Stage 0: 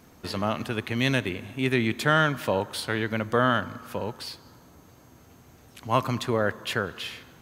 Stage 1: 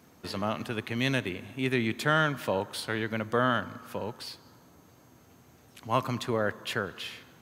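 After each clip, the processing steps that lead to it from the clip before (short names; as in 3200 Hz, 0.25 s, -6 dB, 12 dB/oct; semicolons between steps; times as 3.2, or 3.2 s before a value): HPF 87 Hz; gain -3.5 dB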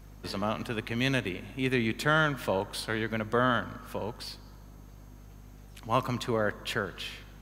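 hum 50 Hz, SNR 18 dB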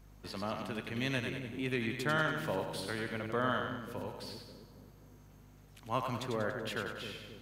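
split-band echo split 470 Hz, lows 0.267 s, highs 95 ms, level -5 dB; gain -7.5 dB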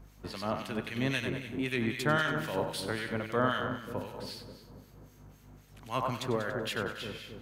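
harmonic tremolo 3.8 Hz, depth 70%, crossover 1600 Hz; gain +6.5 dB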